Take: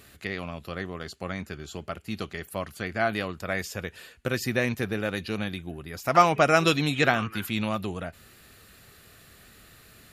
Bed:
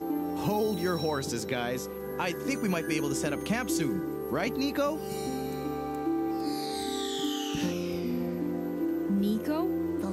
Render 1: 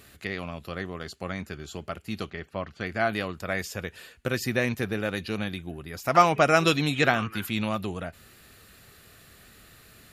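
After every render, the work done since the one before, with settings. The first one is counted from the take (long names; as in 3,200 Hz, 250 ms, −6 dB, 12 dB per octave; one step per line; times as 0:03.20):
0:02.30–0:02.81: high-frequency loss of the air 180 metres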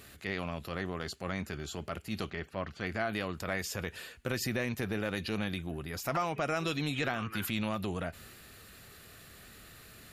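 transient designer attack −6 dB, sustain +2 dB
downward compressor 8 to 1, threshold −29 dBFS, peak gain reduction 13.5 dB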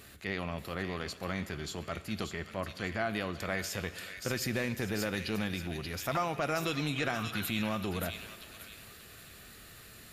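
on a send: delay with a high-pass on its return 582 ms, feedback 32%, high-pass 2,500 Hz, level −3.5 dB
on the sum: dense smooth reverb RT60 2.6 s, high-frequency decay 0.8×, pre-delay 0 ms, DRR 14 dB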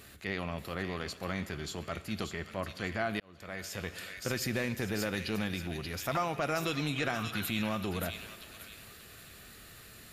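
0:03.20–0:03.97: fade in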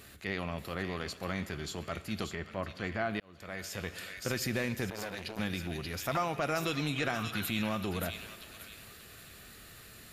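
0:02.35–0:03.20: high-shelf EQ 5,700 Hz −11 dB
0:04.90–0:05.39: saturating transformer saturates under 1,800 Hz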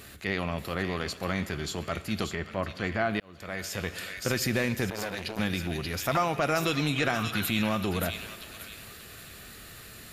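level +5.5 dB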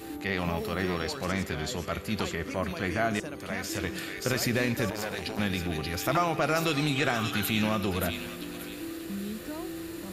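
mix in bed −8.5 dB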